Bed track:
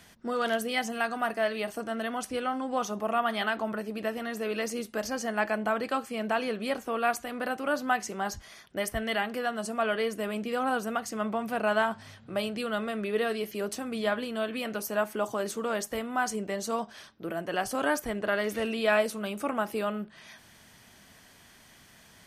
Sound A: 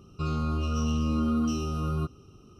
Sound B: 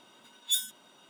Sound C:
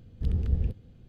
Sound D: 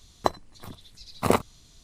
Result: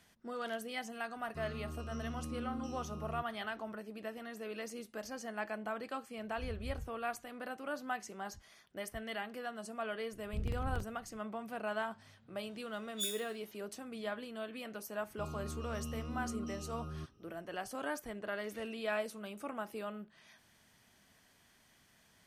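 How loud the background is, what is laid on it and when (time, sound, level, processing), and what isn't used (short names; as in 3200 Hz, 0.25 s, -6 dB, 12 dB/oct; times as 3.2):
bed track -11.5 dB
1.16 add A -16 dB
6.17 add C -16.5 dB + median-filter separation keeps harmonic
10.12 add C -10.5 dB + crackling interface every 0.14 s, samples 2048, repeat, from 0.31
12.49 add B -11.5 dB + spectral trails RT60 0.50 s
14.99 add A -15 dB
not used: D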